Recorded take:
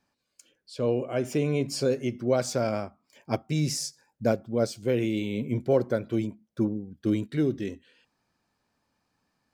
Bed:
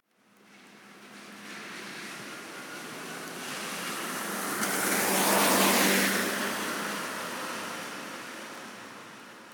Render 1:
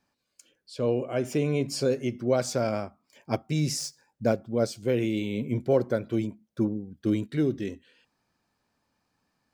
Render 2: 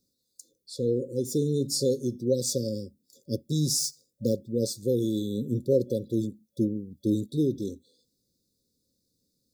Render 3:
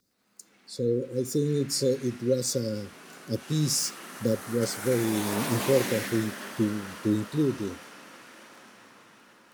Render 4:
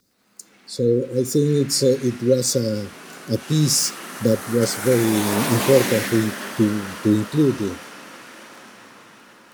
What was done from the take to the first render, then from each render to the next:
3.79–4.50 s: median filter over 3 samples
FFT band-reject 570–3400 Hz; treble shelf 6.9 kHz +11.5 dB
add bed -8.5 dB
trim +8 dB

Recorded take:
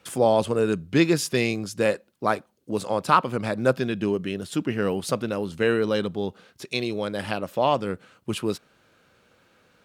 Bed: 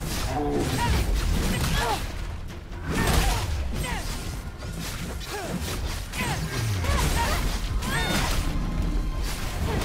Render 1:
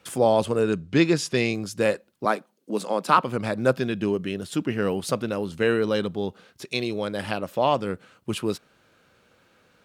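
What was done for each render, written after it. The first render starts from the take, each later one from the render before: 0.63–1.54 s: low-pass 7.9 kHz; 2.25–3.18 s: steep high-pass 160 Hz 48 dB/octave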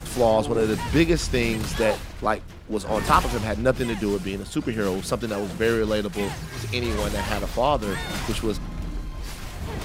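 add bed -5 dB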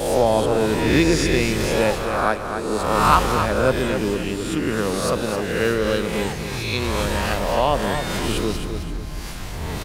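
reverse spectral sustain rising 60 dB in 1.11 s; feedback delay 263 ms, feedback 35%, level -8 dB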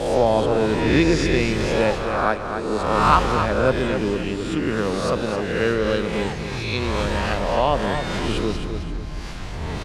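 distance through air 77 m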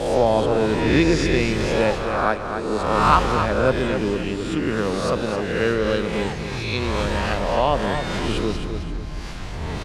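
no audible change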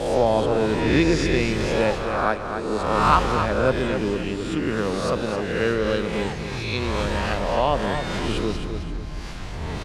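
trim -1.5 dB

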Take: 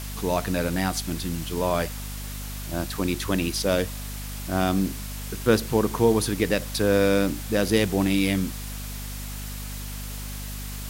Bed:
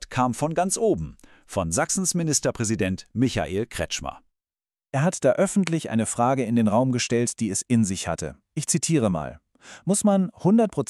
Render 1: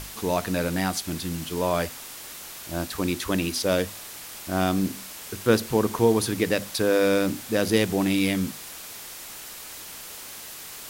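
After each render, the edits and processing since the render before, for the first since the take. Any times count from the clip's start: hum notches 50/100/150/200/250 Hz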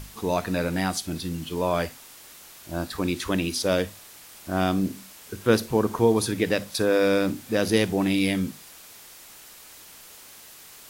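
noise print and reduce 7 dB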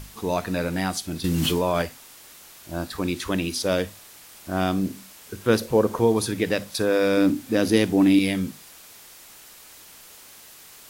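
1.24–1.82 s: level flattener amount 100%; 5.61–6.01 s: peaking EQ 530 Hz +10 dB 0.4 oct; 7.17–8.19 s: peaking EQ 280 Hz +10 dB 0.41 oct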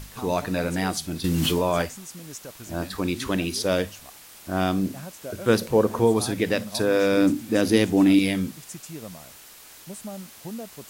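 add bed -17.5 dB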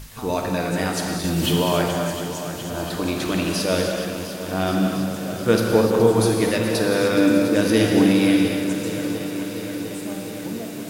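on a send: shuffle delay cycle 702 ms, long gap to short 1.5:1, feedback 68%, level -11.5 dB; on the sum: gated-style reverb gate 330 ms flat, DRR 0.5 dB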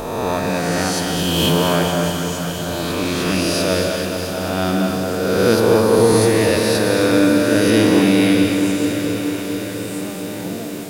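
reverse spectral sustain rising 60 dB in 1.82 s; bit-crushed delay 216 ms, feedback 80%, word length 7-bit, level -11 dB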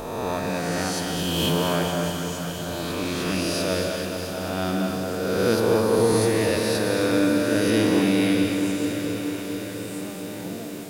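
trim -6.5 dB

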